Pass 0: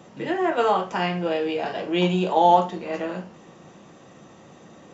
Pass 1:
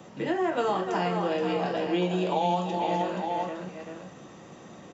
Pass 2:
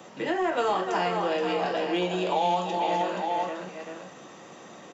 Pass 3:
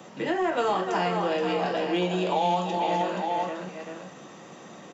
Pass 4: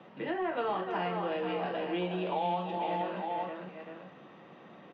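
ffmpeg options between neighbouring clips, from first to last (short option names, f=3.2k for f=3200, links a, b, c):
-filter_complex "[0:a]aecho=1:1:301|475|864:0.237|0.398|0.224,acrossover=split=260|1700|3800[a][b][c][d];[a]acompressor=threshold=-33dB:ratio=4[e];[b]acompressor=threshold=-26dB:ratio=4[f];[c]acompressor=threshold=-45dB:ratio=4[g];[d]acompressor=threshold=-45dB:ratio=4[h];[e][f][g][h]amix=inputs=4:normalize=0"
-filter_complex "[0:a]highpass=f=460:p=1,asplit=2[a][b];[b]asoftclip=type=tanh:threshold=-26dB,volume=-4dB[c];[a][c]amix=inputs=2:normalize=0"
-af "equalizer=f=170:t=o:w=1.2:g=4.5"
-af "lowpass=f=3.3k:w=0.5412,lowpass=f=3.3k:w=1.3066,volume=-7dB"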